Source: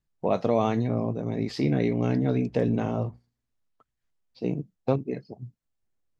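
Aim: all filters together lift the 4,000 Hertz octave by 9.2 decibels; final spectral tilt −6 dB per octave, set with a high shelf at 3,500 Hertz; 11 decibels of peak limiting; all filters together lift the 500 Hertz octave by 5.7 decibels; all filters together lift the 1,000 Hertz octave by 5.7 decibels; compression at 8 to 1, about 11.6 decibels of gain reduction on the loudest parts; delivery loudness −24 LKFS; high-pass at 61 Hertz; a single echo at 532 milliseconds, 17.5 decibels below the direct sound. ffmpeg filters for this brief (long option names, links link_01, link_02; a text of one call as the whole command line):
ffmpeg -i in.wav -af "highpass=61,equalizer=frequency=500:width_type=o:gain=5.5,equalizer=frequency=1000:width_type=o:gain=4.5,highshelf=frequency=3500:gain=8.5,equalizer=frequency=4000:width_type=o:gain=5,acompressor=threshold=-26dB:ratio=8,alimiter=limit=-23dB:level=0:latency=1,aecho=1:1:532:0.133,volume=10.5dB" out.wav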